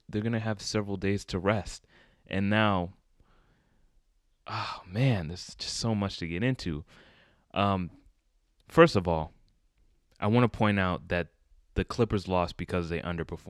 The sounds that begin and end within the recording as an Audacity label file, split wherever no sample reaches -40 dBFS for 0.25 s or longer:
2.310000	2.890000	sound
4.470000	6.810000	sound
7.540000	7.880000	sound
8.700000	9.270000	sound
10.200000	11.250000	sound